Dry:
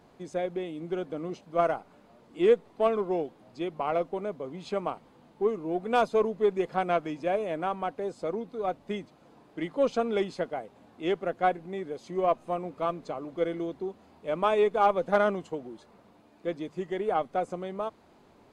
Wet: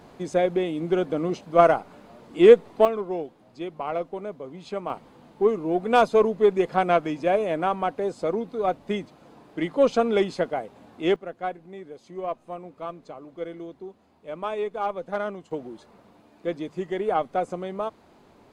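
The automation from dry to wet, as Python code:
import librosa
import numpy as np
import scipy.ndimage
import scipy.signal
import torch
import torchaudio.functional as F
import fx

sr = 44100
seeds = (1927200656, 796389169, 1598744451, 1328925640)

y = fx.gain(x, sr, db=fx.steps((0.0, 9.0), (2.85, -0.5), (4.9, 6.0), (11.16, -5.0), (15.51, 3.5)))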